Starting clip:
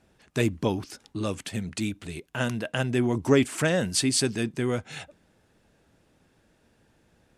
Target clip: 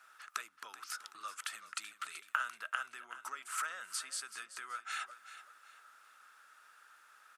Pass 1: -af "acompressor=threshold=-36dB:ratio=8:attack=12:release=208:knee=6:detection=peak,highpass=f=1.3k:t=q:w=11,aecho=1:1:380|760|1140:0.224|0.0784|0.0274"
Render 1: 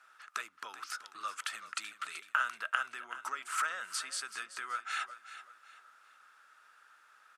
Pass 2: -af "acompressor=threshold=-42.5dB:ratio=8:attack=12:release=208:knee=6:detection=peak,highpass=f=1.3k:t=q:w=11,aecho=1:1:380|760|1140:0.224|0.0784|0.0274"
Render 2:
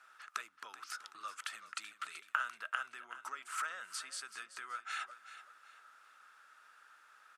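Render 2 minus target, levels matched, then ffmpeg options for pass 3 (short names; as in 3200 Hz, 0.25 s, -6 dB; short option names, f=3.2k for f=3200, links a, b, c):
8000 Hz band -3.5 dB
-af "acompressor=threshold=-42.5dB:ratio=8:attack=12:release=208:knee=6:detection=peak,highpass=f=1.3k:t=q:w=11,highshelf=f=8.5k:g=10,aecho=1:1:380|760|1140:0.224|0.0784|0.0274"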